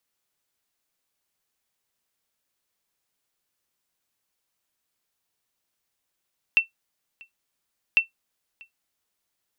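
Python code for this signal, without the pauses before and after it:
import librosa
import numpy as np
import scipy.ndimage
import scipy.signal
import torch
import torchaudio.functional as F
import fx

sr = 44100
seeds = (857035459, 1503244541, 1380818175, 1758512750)

y = fx.sonar_ping(sr, hz=2690.0, decay_s=0.13, every_s=1.4, pings=2, echo_s=0.64, echo_db=-28.0, level_db=-9.0)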